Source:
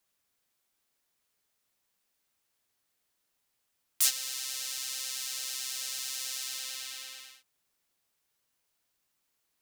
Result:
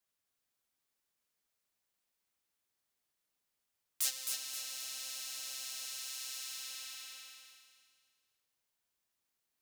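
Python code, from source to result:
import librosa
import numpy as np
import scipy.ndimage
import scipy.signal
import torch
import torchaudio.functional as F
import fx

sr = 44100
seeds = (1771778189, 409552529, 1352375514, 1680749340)

p1 = fx.graphic_eq_31(x, sr, hz=(125, 315, 630), db=(10, 11, 12), at=(4.02, 5.86))
p2 = p1 + fx.echo_feedback(p1, sr, ms=263, feedback_pct=39, wet_db=-5, dry=0)
y = p2 * librosa.db_to_amplitude(-8.0)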